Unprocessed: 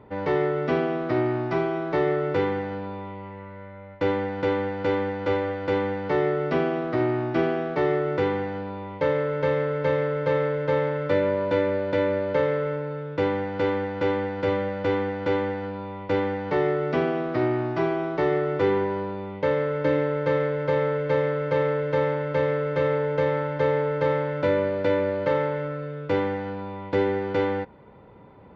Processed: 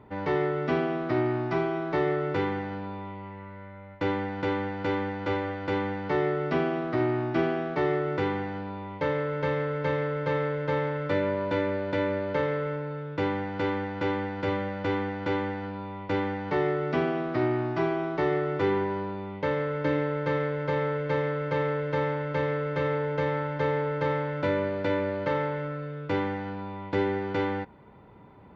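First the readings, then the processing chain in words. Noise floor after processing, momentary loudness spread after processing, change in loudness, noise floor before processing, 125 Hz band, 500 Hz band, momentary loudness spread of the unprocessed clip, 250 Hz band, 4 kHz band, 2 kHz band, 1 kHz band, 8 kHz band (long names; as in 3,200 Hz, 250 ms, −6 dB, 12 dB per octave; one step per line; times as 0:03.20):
−43 dBFS, 6 LU, −3.5 dB, −40 dBFS, −1.5 dB, −5.0 dB, 7 LU, −2.0 dB, −1.5 dB, −1.5 dB, −2.0 dB, can't be measured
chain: parametric band 510 Hz −6.5 dB 0.38 octaves
level −1.5 dB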